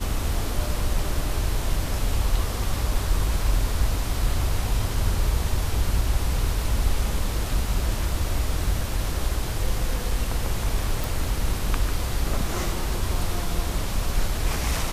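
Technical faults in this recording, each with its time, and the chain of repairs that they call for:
11.04 pop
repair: de-click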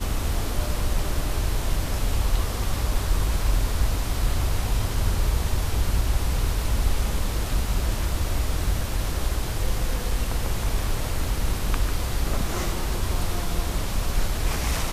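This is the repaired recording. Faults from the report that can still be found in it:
none

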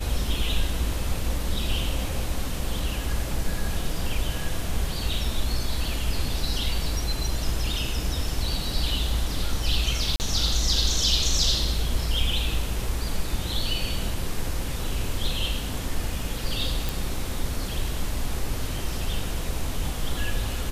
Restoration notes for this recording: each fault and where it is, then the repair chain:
10.16–10.2 gap 39 ms
16.89 pop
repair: de-click; interpolate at 10.16, 39 ms

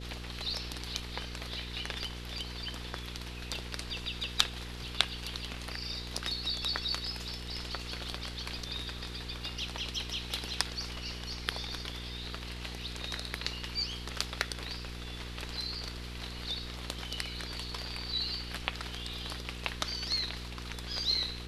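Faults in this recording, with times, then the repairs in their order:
hum 60 Hz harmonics 8 -43 dBFS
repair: de-hum 60 Hz, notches 8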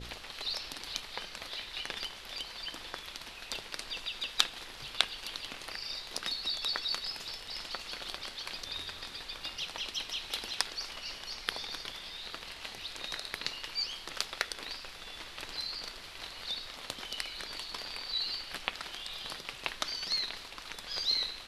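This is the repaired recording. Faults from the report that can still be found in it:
none

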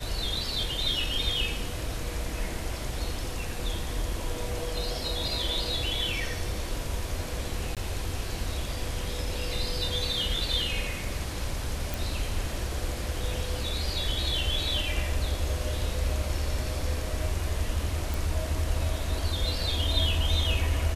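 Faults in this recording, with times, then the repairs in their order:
7.75–7.77 gap 17 ms
11.94 pop
18.14 pop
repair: de-click; interpolate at 7.75, 17 ms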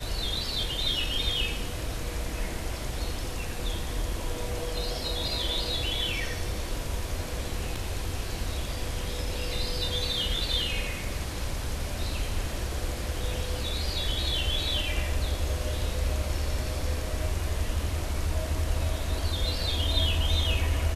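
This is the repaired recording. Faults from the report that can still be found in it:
none

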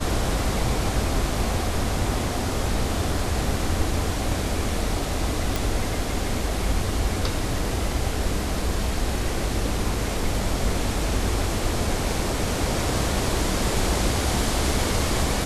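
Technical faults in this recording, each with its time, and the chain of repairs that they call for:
5.56 pop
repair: de-click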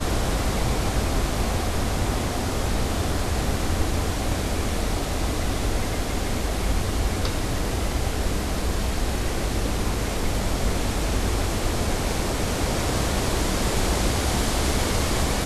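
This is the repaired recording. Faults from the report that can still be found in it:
none

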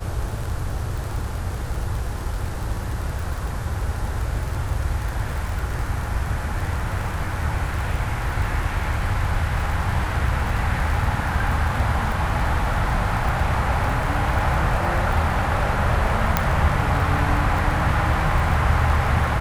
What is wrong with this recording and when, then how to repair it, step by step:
crackle 34/s -26 dBFS
16.37 pop -3 dBFS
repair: de-click

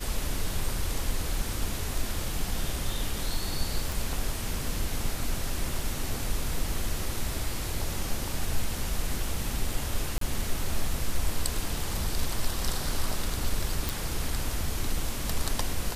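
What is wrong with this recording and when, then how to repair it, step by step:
3.92 pop
10.18–10.21 gap 33 ms
13.89 pop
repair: de-click; interpolate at 10.18, 33 ms

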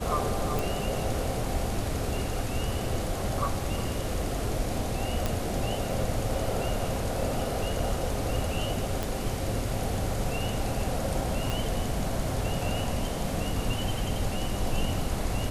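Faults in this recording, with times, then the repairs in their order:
0.59 pop
5.26 pop
9.03 pop
11.5 pop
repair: de-click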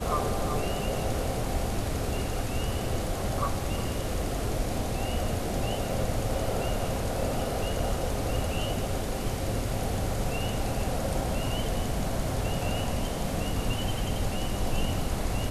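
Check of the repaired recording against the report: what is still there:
11.5 pop

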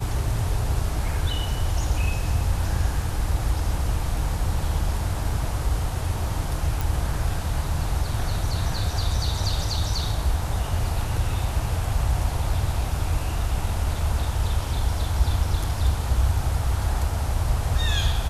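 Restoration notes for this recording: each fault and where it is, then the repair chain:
6.81 pop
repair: de-click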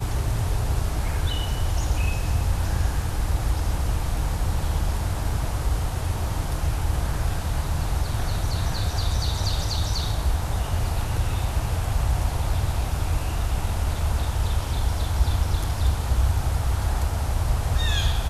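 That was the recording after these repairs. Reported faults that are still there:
none

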